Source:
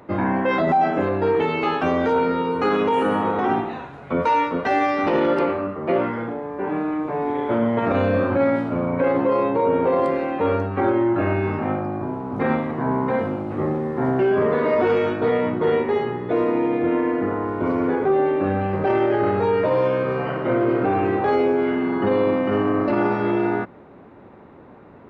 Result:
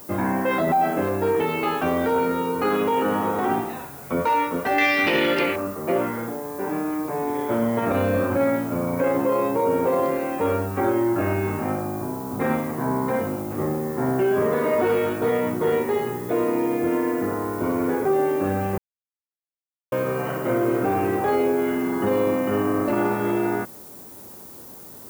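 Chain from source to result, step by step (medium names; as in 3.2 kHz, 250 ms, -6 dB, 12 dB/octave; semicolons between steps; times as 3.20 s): 4.78–5.56 s: resonant high shelf 1.6 kHz +11.5 dB, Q 1.5; added noise violet -41 dBFS; 18.78–19.92 s: mute; trim -2 dB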